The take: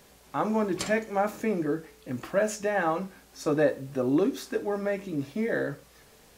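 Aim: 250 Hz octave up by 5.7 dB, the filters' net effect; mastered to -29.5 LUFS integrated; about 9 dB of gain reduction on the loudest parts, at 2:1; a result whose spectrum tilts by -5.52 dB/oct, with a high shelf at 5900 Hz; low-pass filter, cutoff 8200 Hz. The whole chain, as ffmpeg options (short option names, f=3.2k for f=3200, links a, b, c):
-af "lowpass=8.2k,equalizer=f=250:t=o:g=7,highshelf=f=5.9k:g=7,acompressor=threshold=-32dB:ratio=2,volume=3dB"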